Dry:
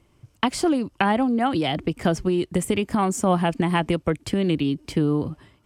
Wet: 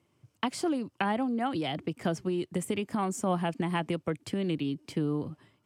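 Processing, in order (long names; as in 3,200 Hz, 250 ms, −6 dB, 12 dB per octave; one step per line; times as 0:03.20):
high-pass filter 100 Hz 24 dB per octave
level −8.5 dB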